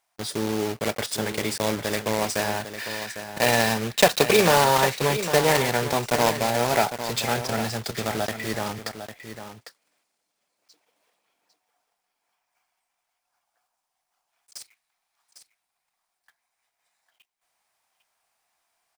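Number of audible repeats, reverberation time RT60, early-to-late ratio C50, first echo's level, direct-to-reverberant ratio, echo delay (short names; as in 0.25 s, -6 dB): 1, none, none, -10.5 dB, none, 0.802 s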